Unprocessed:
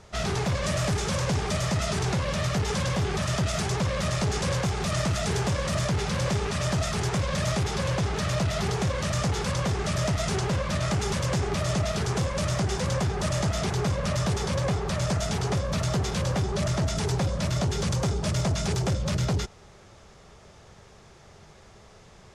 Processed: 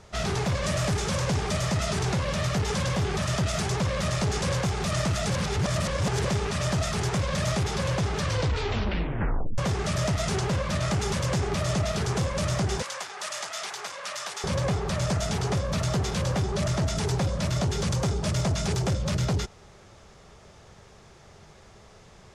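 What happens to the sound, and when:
0:05.30–0:06.25: reverse
0:08.15: tape stop 1.43 s
0:12.82–0:14.44: high-pass filter 1,000 Hz

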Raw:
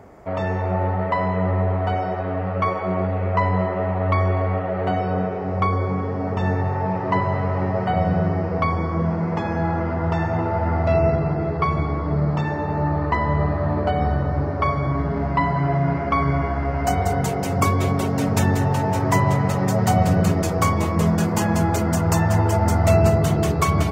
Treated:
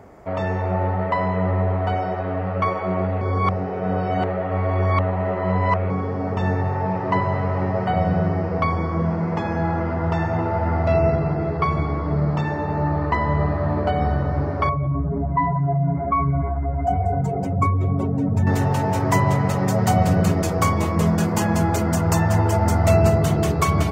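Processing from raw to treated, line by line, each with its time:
0:03.21–0:05.90: reverse
0:14.69–0:18.47: expanding power law on the bin magnitudes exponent 1.8

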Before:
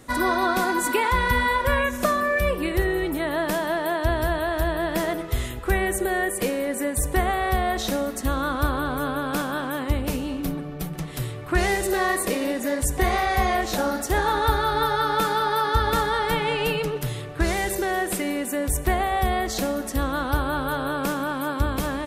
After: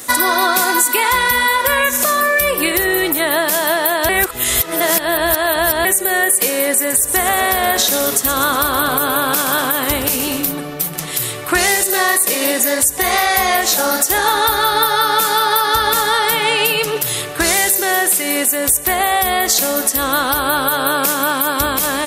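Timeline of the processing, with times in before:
0:04.09–0:05.85: reverse
0:06.78–0:10.46: echo with shifted repeats 120 ms, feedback 55%, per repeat −150 Hz, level −11.5 dB
whole clip: RIAA equalisation recording; downward compressor 4 to 1, threshold −24 dBFS; boost into a limiter +13.5 dB; level −1 dB

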